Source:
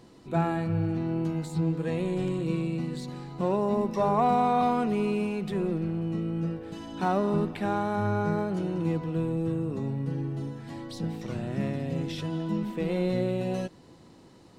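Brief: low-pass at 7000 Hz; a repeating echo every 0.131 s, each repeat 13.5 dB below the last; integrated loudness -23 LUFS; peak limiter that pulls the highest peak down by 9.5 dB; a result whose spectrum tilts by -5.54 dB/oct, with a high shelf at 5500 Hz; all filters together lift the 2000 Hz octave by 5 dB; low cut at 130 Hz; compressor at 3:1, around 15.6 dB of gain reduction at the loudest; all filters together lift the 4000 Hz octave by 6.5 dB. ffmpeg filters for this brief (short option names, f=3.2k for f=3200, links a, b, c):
-af "highpass=130,lowpass=7k,equalizer=f=2k:t=o:g=5,equalizer=f=4k:t=o:g=4.5,highshelf=f=5.5k:g=6,acompressor=threshold=-41dB:ratio=3,alimiter=level_in=13dB:limit=-24dB:level=0:latency=1,volume=-13dB,aecho=1:1:131|262:0.211|0.0444,volume=22dB"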